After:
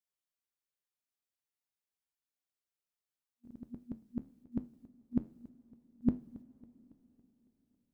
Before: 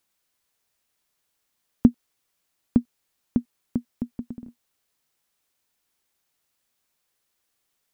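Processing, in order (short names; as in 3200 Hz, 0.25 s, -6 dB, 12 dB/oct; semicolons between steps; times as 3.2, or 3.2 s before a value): whole clip reversed; flange 1.3 Hz, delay 9.9 ms, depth 3.6 ms, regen -80%; gate -58 dBFS, range -9 dB; two-slope reverb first 0.29 s, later 4.5 s, from -18 dB, DRR 15.5 dB; warbling echo 0.277 s, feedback 50%, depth 69 cents, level -22 dB; gain -7 dB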